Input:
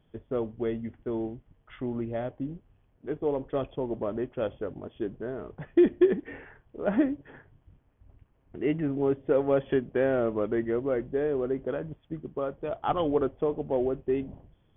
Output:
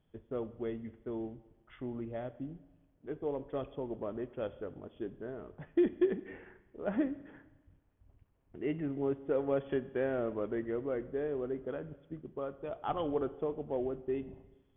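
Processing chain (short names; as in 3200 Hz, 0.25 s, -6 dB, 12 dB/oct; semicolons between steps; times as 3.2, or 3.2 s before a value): Schroeder reverb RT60 1.2 s, combs from 32 ms, DRR 15.5 dB; gain -7.5 dB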